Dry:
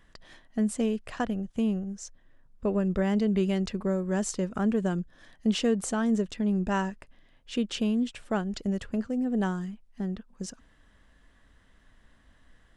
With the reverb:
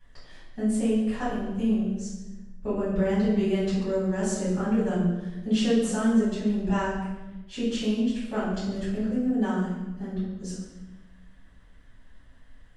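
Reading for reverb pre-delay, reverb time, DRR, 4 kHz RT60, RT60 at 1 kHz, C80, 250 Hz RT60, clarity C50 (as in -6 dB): 5 ms, 1.1 s, -11.5 dB, 0.90 s, 0.95 s, 3.5 dB, 1.6 s, 1.0 dB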